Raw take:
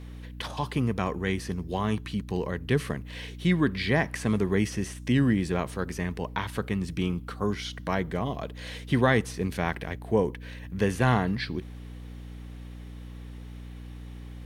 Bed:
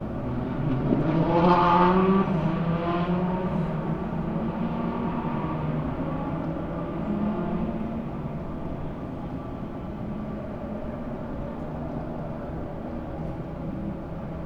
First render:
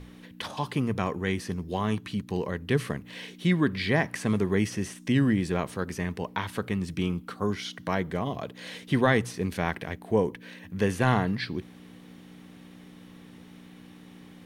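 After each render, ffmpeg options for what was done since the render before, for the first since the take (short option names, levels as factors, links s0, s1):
-af "bandreject=f=60:t=h:w=6,bandreject=f=120:t=h:w=6"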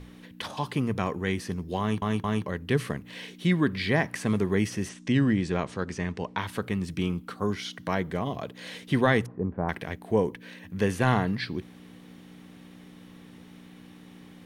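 -filter_complex "[0:a]asettb=1/sr,asplit=3[s0][s1][s2];[s0]atrim=end=4.894[s3];[s1]atrim=start=4.89:end=6.38,asetpts=PTS-STARTPTS,afade=t=in:d=0.004:c=qsin,afade=t=out:st=1.486:d=0.004:c=qsin,lowpass=f=7900:w=0.5412,lowpass=f=7900:w=1.3066[s4];[s2]atrim=start=6.376[s5];[s3][s4]acrossfade=d=0.004:c1=hsin:c2=qsin[s6];[s6][s5]acrossfade=d=0.004:c1=qsin:c2=hsin,asettb=1/sr,asplit=3[s7][s8][s9];[s7]atrim=end=9.264[s10];[s8]atrim=start=9.26:end=9.69,asetpts=PTS-STARTPTS,afade=t=in:d=0.004:c=qsin,afade=t=out:st=0.426:d=0.004:c=qsin,lowpass=f=1100:w=0.5412,lowpass=f=1100:w=1.3066[s11];[s9]atrim=start=9.686[s12];[s10][s11]acrossfade=d=0.004:c1=hsin:c2=qsin[s13];[s13][s12]acrossfade=d=0.004:c1=qsin:c2=hsin,asplit=4[s14][s15][s16][s17];[s14]atrim=end=2.022[s18];[s15]atrim=start=1.798:end=2.022[s19];[s16]atrim=start=1.798:end=2.022[s20];[s17]atrim=start=2.458[s21];[s18][s19]acrossfade=d=0.004:c1=hsin:c2=hsin[s22];[s22][s20]acrossfade=d=0.004:c1=hsin:c2=hsin[s23];[s23][s21]acrossfade=d=0.004:c1=hsin:c2=hsin"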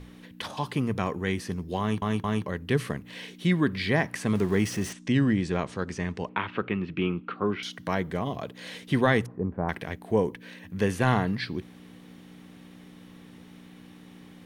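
-filter_complex "[0:a]asettb=1/sr,asplit=3[s0][s1][s2];[s0]atrim=end=4.354[s3];[s1]atrim=start=4.35:end=4.93,asetpts=PTS-STARTPTS,afade=t=in:d=0.004:c=qsin,afade=t=out:st=0.576:d=0.004:c=qsin,aeval=exprs='val(0)+0.5*0.0126*sgn(val(0))':c=same[s4];[s2]atrim=start=4.926[s5];[s3][s4]acrossfade=d=0.004:c1=hsin:c2=qsin[s6];[s6][s5]acrossfade=d=0.004:c1=qsin:c2=hsin,asettb=1/sr,asplit=3[s7][s8][s9];[s7]atrim=end=6.294[s10];[s8]atrim=start=6.29:end=7.63,asetpts=PTS-STARTPTS,afade=t=in:d=0.004:c=qsin,afade=t=out:st=1.336:d=0.004:c=qsin,highpass=120,equalizer=f=350:t=q:w=4:g=6,equalizer=f=1300:t=q:w=4:g=6,equalizer=f=2600:t=q:w=4:g=7,lowpass=f=3200:w=0.5412,lowpass=f=3200:w=1.3066[s11];[s9]atrim=start=7.626[s12];[s10][s11]acrossfade=d=0.004:c1=hsin:c2=qsin[s13];[s13][s12]acrossfade=d=0.004:c1=qsin:c2=hsin"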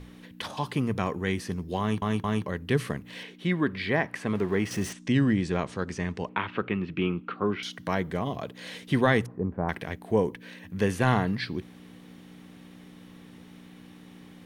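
-filter_complex "[0:a]asettb=1/sr,asplit=3[s0][s1][s2];[s0]atrim=end=3.234[s3];[s1]atrim=start=3.23:end=4.71,asetpts=PTS-STARTPTS,afade=t=in:d=0.004:c=qsin,afade=t=out:st=1.476:d=0.004:c=qsin,bass=f=250:g=-5,treble=f=4000:g=-10[s4];[s2]atrim=start=4.706[s5];[s3][s4]acrossfade=d=0.004:c1=hsin:c2=qsin[s6];[s6][s5]acrossfade=d=0.004:c1=qsin:c2=hsin"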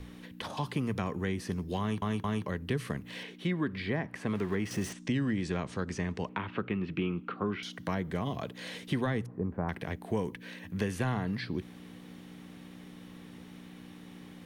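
-filter_complex "[0:a]acrossover=split=290|1100[s0][s1][s2];[s0]acompressor=threshold=0.0282:ratio=4[s3];[s1]acompressor=threshold=0.0141:ratio=4[s4];[s2]acompressor=threshold=0.01:ratio=4[s5];[s3][s4][s5]amix=inputs=3:normalize=0"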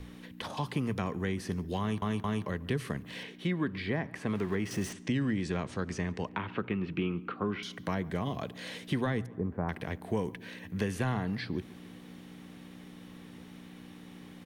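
-filter_complex "[0:a]asplit=2[s0][s1];[s1]adelay=141,lowpass=f=2500:p=1,volume=0.0891,asplit=2[s2][s3];[s3]adelay=141,lowpass=f=2500:p=1,volume=0.54,asplit=2[s4][s5];[s5]adelay=141,lowpass=f=2500:p=1,volume=0.54,asplit=2[s6][s7];[s7]adelay=141,lowpass=f=2500:p=1,volume=0.54[s8];[s0][s2][s4][s6][s8]amix=inputs=5:normalize=0"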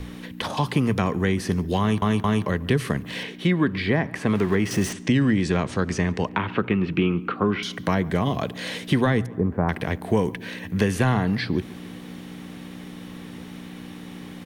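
-af "volume=3.35"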